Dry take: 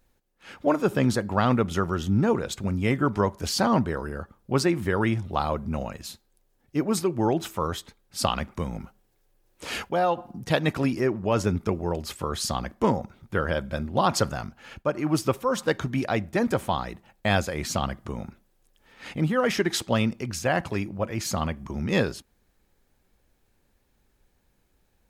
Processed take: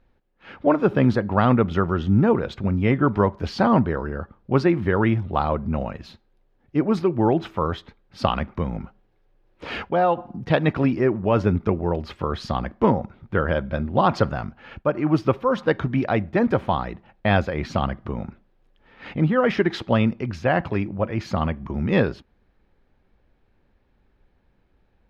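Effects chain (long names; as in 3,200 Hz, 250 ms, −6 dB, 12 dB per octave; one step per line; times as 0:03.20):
high-frequency loss of the air 310 metres
level +5 dB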